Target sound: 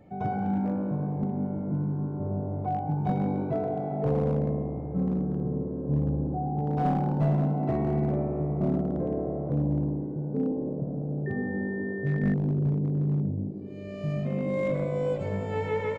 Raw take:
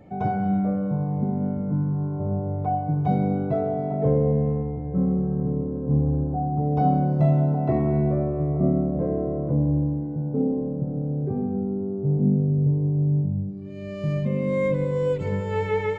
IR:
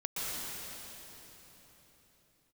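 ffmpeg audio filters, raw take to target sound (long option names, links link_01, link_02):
-filter_complex "[0:a]asplit=8[link_01][link_02][link_03][link_04][link_05][link_06][link_07][link_08];[link_02]adelay=107,afreqshift=55,volume=-11dB[link_09];[link_03]adelay=214,afreqshift=110,volume=-15.4dB[link_10];[link_04]adelay=321,afreqshift=165,volume=-19.9dB[link_11];[link_05]adelay=428,afreqshift=220,volume=-24.3dB[link_12];[link_06]adelay=535,afreqshift=275,volume=-28.7dB[link_13];[link_07]adelay=642,afreqshift=330,volume=-33.2dB[link_14];[link_08]adelay=749,afreqshift=385,volume=-37.6dB[link_15];[link_01][link_09][link_10][link_11][link_12][link_13][link_14][link_15]amix=inputs=8:normalize=0,asettb=1/sr,asplit=3[link_16][link_17][link_18];[link_16]atrim=end=11.264[link_19];[link_17]atrim=start=11.26:end=12.34,asetpts=PTS-STARTPTS,afade=type=in:duration=0.004:curve=qsin,afade=type=out:start_time=1.076:duration=0.004:curve=qsin,aeval=exprs='val(0)+0.02*sin(2*PI*1800*n/s)':channel_layout=same[link_20];[link_18]atrim=start=12.336[link_21];[link_19][link_20]acrossfade=duration=0.004:curve1=hsin:curve2=qsin[link_22];[link_22][link_21]acrossfade=duration=0.004:curve1=qsin:curve2=hsin,aeval=exprs='clip(val(0),-1,0.158)':channel_layout=same,volume=-5dB"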